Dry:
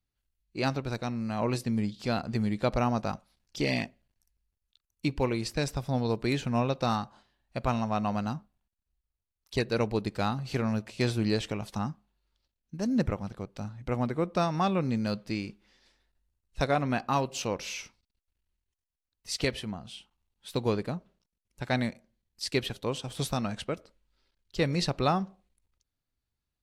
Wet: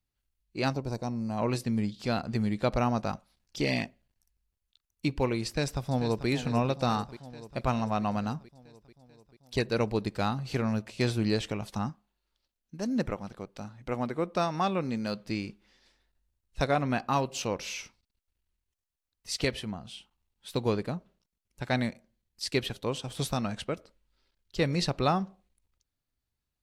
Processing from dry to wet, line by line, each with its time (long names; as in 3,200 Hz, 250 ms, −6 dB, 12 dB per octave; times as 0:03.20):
0:00.73–0:01.37: gain on a spectral selection 1,100–4,300 Hz −10 dB
0:05.47–0:06.28: delay throw 440 ms, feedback 70%, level −11.5 dB
0:11.89–0:15.20: parametric band 76 Hz −8.5 dB 2.3 octaves